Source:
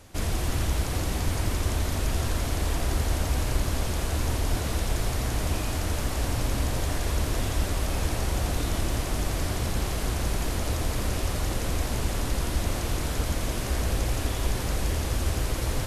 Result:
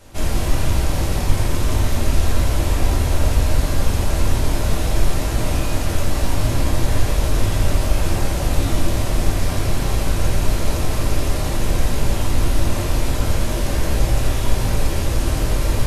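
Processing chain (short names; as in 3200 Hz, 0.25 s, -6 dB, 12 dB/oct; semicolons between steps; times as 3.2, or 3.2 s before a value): shoebox room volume 110 m³, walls mixed, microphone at 1.2 m; gain +1 dB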